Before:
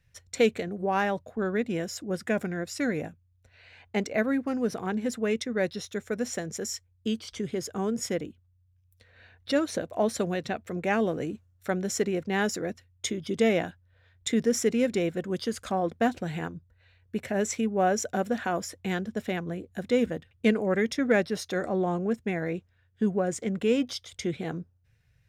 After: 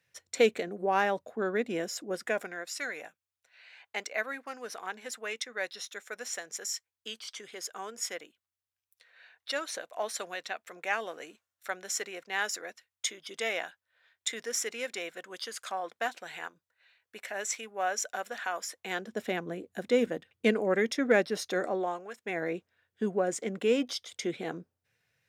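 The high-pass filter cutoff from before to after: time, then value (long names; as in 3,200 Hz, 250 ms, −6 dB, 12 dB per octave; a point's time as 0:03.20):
0:01.96 300 Hz
0:02.79 930 Hz
0:18.63 930 Hz
0:19.25 270 Hz
0:21.61 270 Hz
0:22.12 1,100 Hz
0:22.40 300 Hz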